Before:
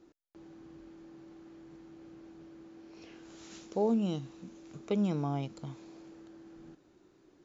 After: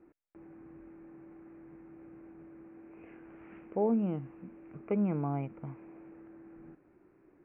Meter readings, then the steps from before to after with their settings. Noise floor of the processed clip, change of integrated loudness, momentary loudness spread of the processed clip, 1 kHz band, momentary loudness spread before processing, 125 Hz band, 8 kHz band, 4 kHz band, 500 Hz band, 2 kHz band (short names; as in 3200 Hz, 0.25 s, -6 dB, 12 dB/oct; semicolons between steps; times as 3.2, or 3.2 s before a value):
-65 dBFS, 0.0 dB, 22 LU, 0.0 dB, 22 LU, 0.0 dB, n/a, under -20 dB, 0.0 dB, -1.0 dB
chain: steep low-pass 2500 Hz 72 dB/oct